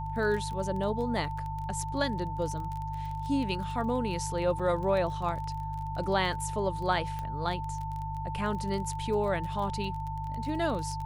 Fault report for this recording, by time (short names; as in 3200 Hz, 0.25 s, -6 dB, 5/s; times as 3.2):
crackle 24/s -35 dBFS
hum 50 Hz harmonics 3 -37 dBFS
tone 890 Hz -36 dBFS
4.59–4.6 gap 5.1 ms
7.19 pop -24 dBFS